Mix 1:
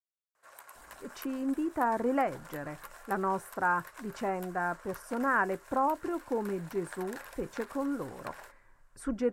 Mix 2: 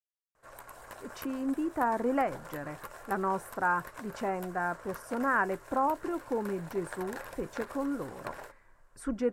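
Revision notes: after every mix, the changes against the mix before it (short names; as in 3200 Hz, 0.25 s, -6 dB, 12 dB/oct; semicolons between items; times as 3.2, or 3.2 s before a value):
background: remove HPF 1200 Hz 6 dB/oct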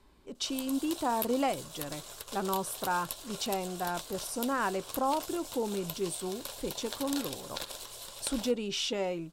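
speech: entry -0.75 s; master: add resonant high shelf 2500 Hz +12 dB, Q 3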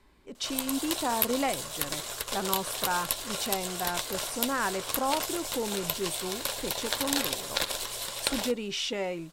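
background +9.0 dB; master: add bell 2000 Hz +6.5 dB 0.6 oct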